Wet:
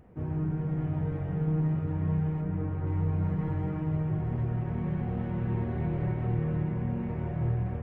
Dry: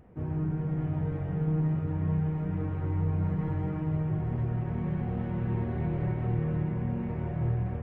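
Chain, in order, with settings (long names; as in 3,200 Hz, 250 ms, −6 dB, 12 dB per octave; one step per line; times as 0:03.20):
0:02.41–0:02.87: low-pass filter 2,100 Hz 6 dB per octave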